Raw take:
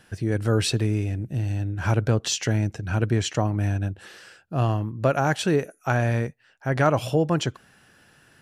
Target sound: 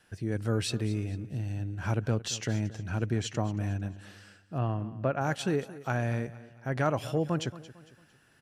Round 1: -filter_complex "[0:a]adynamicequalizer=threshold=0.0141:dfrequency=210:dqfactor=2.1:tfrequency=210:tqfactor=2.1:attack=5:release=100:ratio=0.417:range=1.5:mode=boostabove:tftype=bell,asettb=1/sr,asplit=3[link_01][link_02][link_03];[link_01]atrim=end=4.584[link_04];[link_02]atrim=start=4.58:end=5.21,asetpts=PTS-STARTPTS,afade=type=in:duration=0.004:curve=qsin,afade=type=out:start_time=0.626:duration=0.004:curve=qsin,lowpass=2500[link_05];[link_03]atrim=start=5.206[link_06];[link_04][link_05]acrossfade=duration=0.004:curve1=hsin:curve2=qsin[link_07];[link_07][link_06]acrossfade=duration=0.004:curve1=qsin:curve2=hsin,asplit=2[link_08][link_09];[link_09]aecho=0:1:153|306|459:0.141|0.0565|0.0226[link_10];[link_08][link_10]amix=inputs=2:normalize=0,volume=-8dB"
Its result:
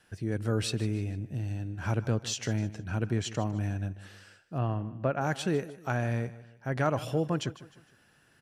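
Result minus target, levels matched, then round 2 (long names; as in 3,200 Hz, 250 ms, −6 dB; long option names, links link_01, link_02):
echo 73 ms early
-filter_complex "[0:a]adynamicequalizer=threshold=0.0141:dfrequency=210:dqfactor=2.1:tfrequency=210:tqfactor=2.1:attack=5:release=100:ratio=0.417:range=1.5:mode=boostabove:tftype=bell,asettb=1/sr,asplit=3[link_01][link_02][link_03];[link_01]atrim=end=4.584[link_04];[link_02]atrim=start=4.58:end=5.21,asetpts=PTS-STARTPTS,afade=type=in:duration=0.004:curve=qsin,afade=type=out:start_time=0.626:duration=0.004:curve=qsin,lowpass=2500[link_05];[link_03]atrim=start=5.206[link_06];[link_04][link_05]acrossfade=duration=0.004:curve1=hsin:curve2=qsin[link_07];[link_07][link_06]acrossfade=duration=0.004:curve1=qsin:curve2=hsin,asplit=2[link_08][link_09];[link_09]aecho=0:1:226|452|678:0.141|0.0565|0.0226[link_10];[link_08][link_10]amix=inputs=2:normalize=0,volume=-8dB"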